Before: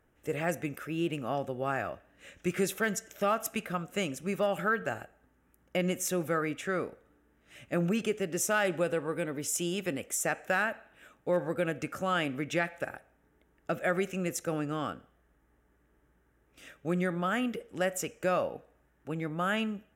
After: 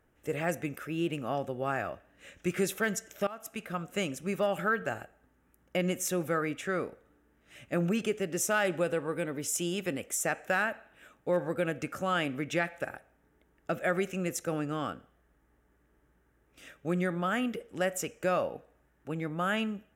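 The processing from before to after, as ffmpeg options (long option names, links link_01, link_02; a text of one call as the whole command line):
ffmpeg -i in.wav -filter_complex "[0:a]asplit=2[link_01][link_02];[link_01]atrim=end=3.27,asetpts=PTS-STARTPTS,afade=type=out:start_time=3.266:duration=0.004:curve=hsin:silence=0.1[link_03];[link_02]atrim=start=3.27,asetpts=PTS-STARTPTS,afade=type=in:duration=0.59:silence=0.1[link_04];[link_03][link_04]concat=n=2:v=0:a=1" out.wav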